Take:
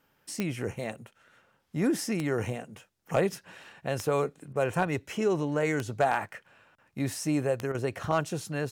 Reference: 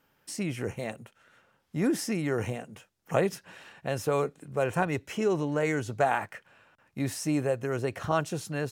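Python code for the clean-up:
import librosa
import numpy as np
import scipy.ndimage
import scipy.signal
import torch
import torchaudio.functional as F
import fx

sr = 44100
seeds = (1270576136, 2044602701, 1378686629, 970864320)

y = fx.fix_declip(x, sr, threshold_db=-15.0)
y = fx.fix_declick_ar(y, sr, threshold=10.0)
y = fx.fix_interpolate(y, sr, at_s=(4.53, 7.72), length_ms=24.0)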